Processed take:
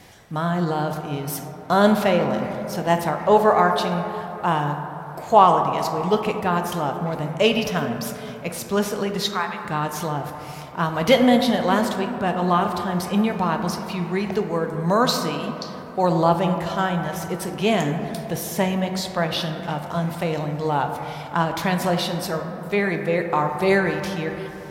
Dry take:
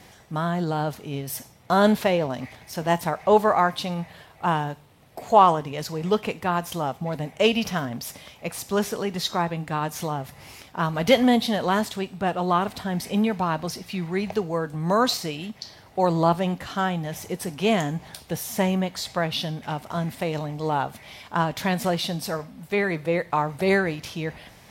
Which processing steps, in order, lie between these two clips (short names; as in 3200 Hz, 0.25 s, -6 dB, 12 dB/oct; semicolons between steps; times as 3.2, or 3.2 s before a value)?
9.21–9.65 resonant high-pass 1300 Hz, resonance Q 1.6; reverb RT60 3.2 s, pre-delay 8 ms, DRR 5.5 dB; gain +1.5 dB